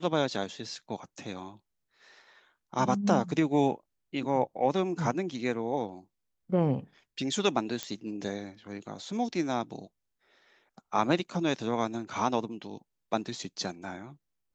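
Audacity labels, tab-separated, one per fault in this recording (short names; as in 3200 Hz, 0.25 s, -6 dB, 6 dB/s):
7.830000	7.830000	pop -16 dBFS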